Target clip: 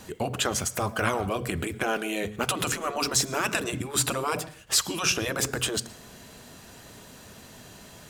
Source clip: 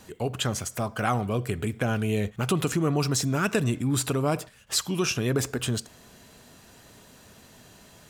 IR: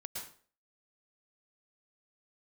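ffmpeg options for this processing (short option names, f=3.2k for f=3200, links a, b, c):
-filter_complex "[0:a]asplit=2[a][b];[1:a]atrim=start_sample=2205,afade=t=out:st=0.42:d=0.01,atrim=end_sample=18963,lowshelf=f=67:g=-10.5[c];[b][c]afir=irnorm=-1:irlink=0,volume=-17.5dB[d];[a][d]amix=inputs=2:normalize=0,acontrast=48,afftfilt=real='re*lt(hypot(re,im),0.501)':imag='im*lt(hypot(re,im),0.501)':win_size=1024:overlap=0.75,volume=-2dB"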